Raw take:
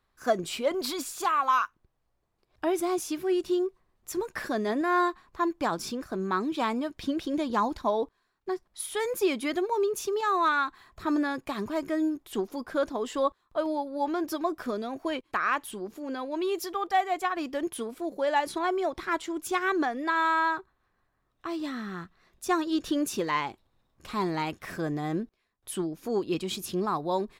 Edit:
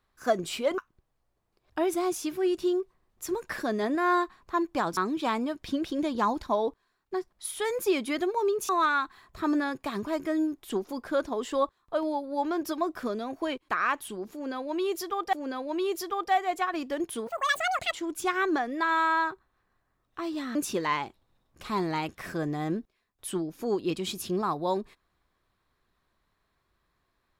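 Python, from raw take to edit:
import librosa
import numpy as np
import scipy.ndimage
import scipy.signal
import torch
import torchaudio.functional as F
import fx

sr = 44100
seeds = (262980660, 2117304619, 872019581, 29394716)

y = fx.edit(x, sr, fx.cut(start_s=0.78, length_s=0.86),
    fx.cut(start_s=5.83, length_s=0.49),
    fx.cut(start_s=10.04, length_s=0.28),
    fx.repeat(start_s=15.96, length_s=1.0, count=2),
    fx.speed_span(start_s=17.9, length_s=1.29, speed=1.98),
    fx.cut(start_s=21.82, length_s=1.17), tone=tone)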